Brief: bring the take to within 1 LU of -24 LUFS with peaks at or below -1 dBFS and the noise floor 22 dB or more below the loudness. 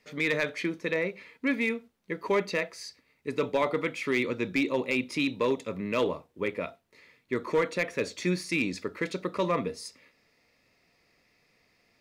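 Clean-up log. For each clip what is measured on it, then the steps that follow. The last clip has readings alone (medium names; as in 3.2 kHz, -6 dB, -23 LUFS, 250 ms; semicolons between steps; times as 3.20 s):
clipped samples 0.3%; clipping level -18.5 dBFS; loudness -30.0 LUFS; peak level -18.5 dBFS; loudness target -24.0 LUFS
-> clip repair -18.5 dBFS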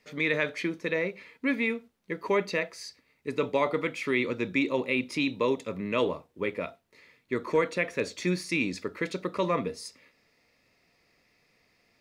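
clipped samples 0.0%; loudness -29.5 LUFS; peak level -13.0 dBFS; loudness target -24.0 LUFS
-> trim +5.5 dB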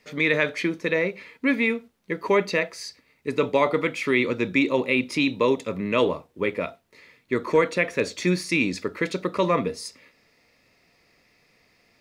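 loudness -24.0 LUFS; peak level -7.5 dBFS; noise floor -65 dBFS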